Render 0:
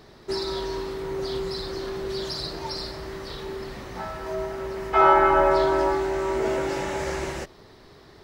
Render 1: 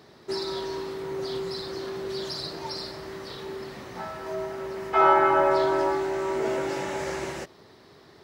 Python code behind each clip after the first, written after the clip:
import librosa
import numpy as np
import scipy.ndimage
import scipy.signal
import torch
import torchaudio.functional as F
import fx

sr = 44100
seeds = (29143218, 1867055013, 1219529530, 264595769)

y = scipy.signal.sosfilt(scipy.signal.butter(2, 110.0, 'highpass', fs=sr, output='sos'), x)
y = y * librosa.db_to_amplitude(-2.0)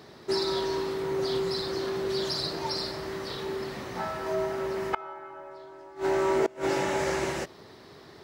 y = fx.gate_flip(x, sr, shuts_db=-17.0, range_db=-26)
y = y * librosa.db_to_amplitude(3.0)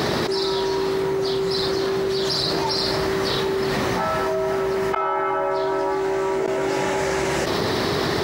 y = fx.env_flatten(x, sr, amount_pct=100)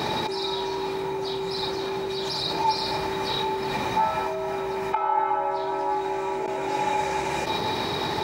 y = fx.small_body(x, sr, hz=(870.0, 2400.0, 3800.0), ring_ms=65, db=17)
y = y * librosa.db_to_amplitude(-7.5)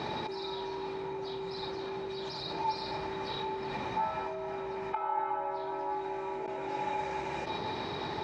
y = fx.air_absorb(x, sr, metres=120.0)
y = y * librosa.db_to_amplitude(-8.5)